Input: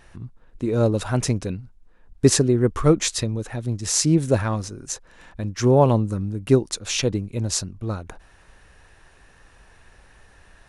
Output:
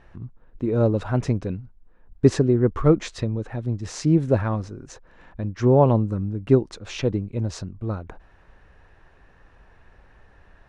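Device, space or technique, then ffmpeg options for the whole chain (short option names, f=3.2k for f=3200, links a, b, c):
through cloth: -af "lowpass=7k,highshelf=f=3.3k:g=-17"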